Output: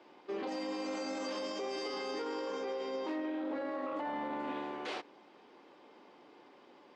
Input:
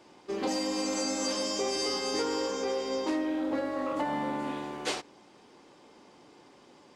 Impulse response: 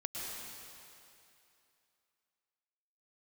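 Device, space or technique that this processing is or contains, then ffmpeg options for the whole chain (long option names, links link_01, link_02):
DJ mixer with the lows and highs turned down: -filter_complex "[0:a]acrossover=split=220 4100:gain=0.158 1 0.1[link_01][link_02][link_03];[link_01][link_02][link_03]amix=inputs=3:normalize=0,alimiter=level_in=5dB:limit=-24dB:level=0:latency=1:release=22,volume=-5dB,volume=-1.5dB"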